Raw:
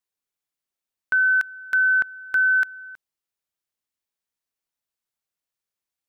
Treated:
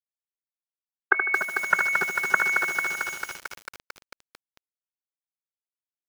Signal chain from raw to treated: low-pass that closes with the level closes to 650 Hz, closed at -19 dBFS; level rider gain up to 12.5 dB; formant-preserving pitch shift +6.5 st; bit crusher 6-bit; cabinet simulation 170–2200 Hz, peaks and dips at 180 Hz +9 dB, 380 Hz +10 dB, 630 Hz +10 dB, 1 kHz +7 dB; on a send: feedback delay 76 ms, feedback 36%, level -7 dB; on the sum: bit-crushed delay 223 ms, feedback 80%, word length 5-bit, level -5 dB; trim -5.5 dB

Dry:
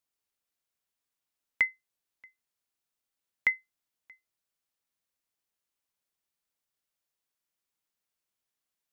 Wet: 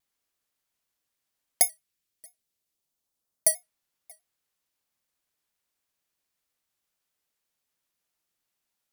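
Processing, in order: bit-reversed sample order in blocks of 32 samples; 1.61–3.48 s: peaking EQ 650 Hz -> 2.6 kHz -9 dB 1.7 oct; vibrato with a chosen wave square 6.2 Hz, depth 100 cents; trim +5 dB

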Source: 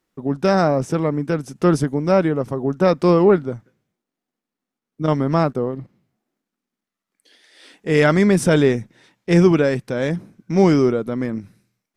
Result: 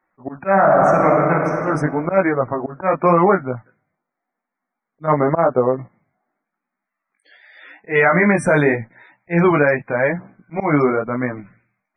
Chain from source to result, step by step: chorus 0.88 Hz, delay 15.5 ms, depth 5 ms; slow attack 147 ms; high-order bell 1.2 kHz +11 dB 2.3 oct; loudest bins only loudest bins 64; 0.49–1.61 s: reverb throw, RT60 2.3 s, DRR -0.5 dB; 5.11–5.77 s: dynamic bell 480 Hz, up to +8 dB, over -34 dBFS, Q 1.4; 7.92–8.76 s: de-hum 297.4 Hz, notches 36; loudness maximiser +5.5 dB; trim -3.5 dB

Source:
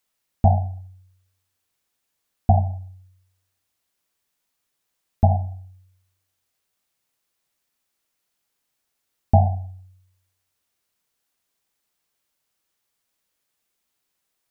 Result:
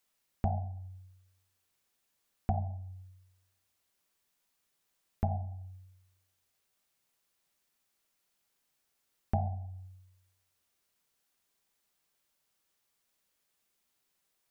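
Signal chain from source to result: compression 2:1, threshold -36 dBFS, peak gain reduction 14 dB; on a send: reverberation RT60 0.65 s, pre-delay 5 ms, DRR 14 dB; on the sum: trim -2 dB

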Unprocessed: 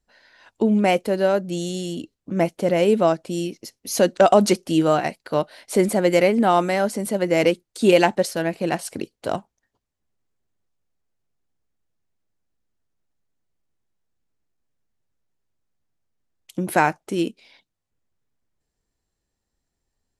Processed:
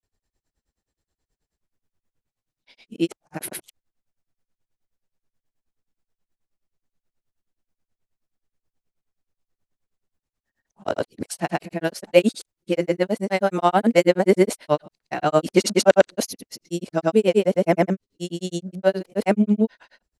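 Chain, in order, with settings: reverse the whole clip; granulator 99 ms, grains 9.4 per s, pitch spread up and down by 0 st; trim +3 dB

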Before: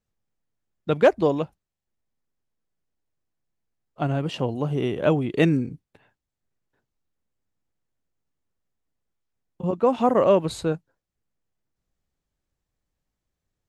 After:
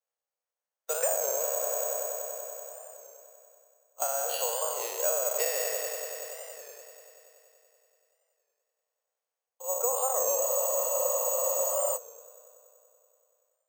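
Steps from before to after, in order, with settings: spectral sustain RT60 1.26 s; steep high-pass 480 Hz 72 dB/octave; peaking EQ 2 kHz -5 dB 1.7 oct; on a send: multi-head delay 95 ms, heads first and second, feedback 73%, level -13.5 dB; on the sum: compression 5:1, threshold -25 dBFS, peak gain reduction 14 dB; careless resampling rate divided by 6×, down filtered, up zero stuff; level rider gain up to 4.5 dB; treble shelf 5.5 kHz -9 dB; spectral freeze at 10.38 s, 1.60 s; warped record 33 1/3 rpm, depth 100 cents; trim -4 dB

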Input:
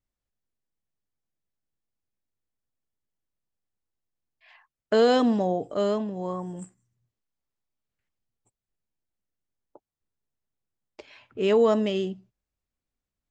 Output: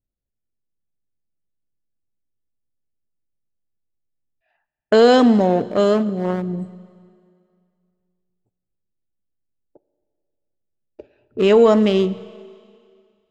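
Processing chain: local Wiener filter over 41 samples; gate -53 dBFS, range -8 dB; in parallel at +0.5 dB: peak limiter -19.5 dBFS, peak gain reduction 8 dB; on the sum: Schroeder reverb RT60 2.2 s, combs from 30 ms, DRR 16.5 dB; trim +4.5 dB

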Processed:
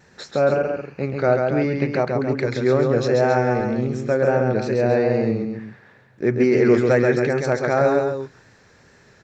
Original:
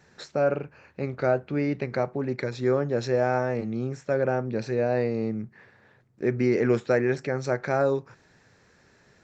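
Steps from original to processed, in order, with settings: loudspeakers at several distances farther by 46 m -4 dB, 94 m -9 dB; wow and flutter 29 cents; trim +5 dB

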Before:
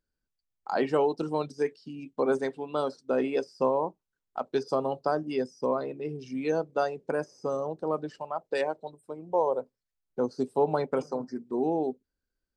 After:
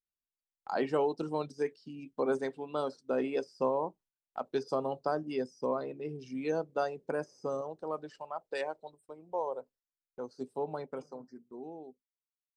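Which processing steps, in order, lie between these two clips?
fade out at the end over 3.90 s; gate -56 dBFS, range -16 dB; 7.61–10.41 s: peaking EQ 180 Hz -7 dB 2.6 oct; trim -4.5 dB

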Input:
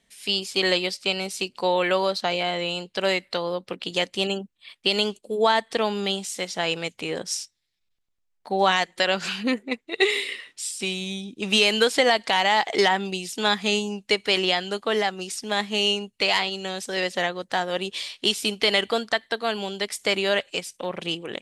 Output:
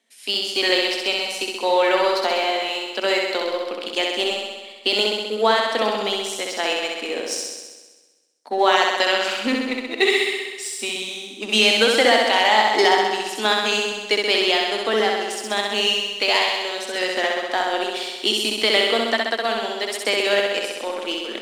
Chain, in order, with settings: Chebyshev high-pass 220 Hz, order 6; in parallel at -6 dB: crossover distortion -32.5 dBFS; on the sum: flutter echo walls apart 11.1 m, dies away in 1.3 s; trim -1 dB

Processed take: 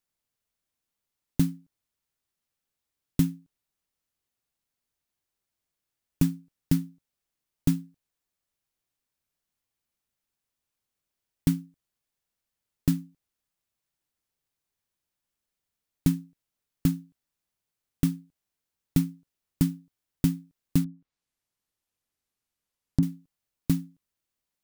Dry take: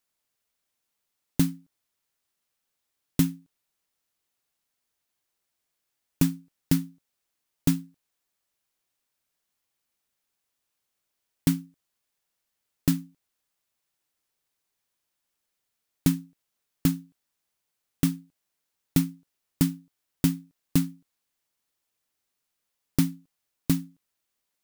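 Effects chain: 20.84–23.03 s: low-pass that closes with the level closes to 610 Hz, closed at -35.5 dBFS; bass shelf 230 Hz +9 dB; trim -5.5 dB

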